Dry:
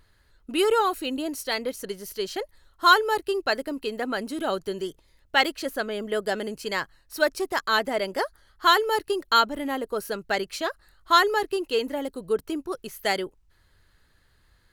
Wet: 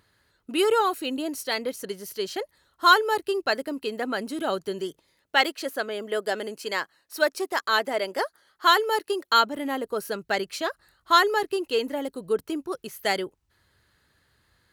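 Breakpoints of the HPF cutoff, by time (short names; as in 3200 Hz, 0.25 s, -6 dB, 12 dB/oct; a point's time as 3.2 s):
4.86 s 110 Hz
5.49 s 280 Hz
9.25 s 280 Hz
9.7 s 85 Hz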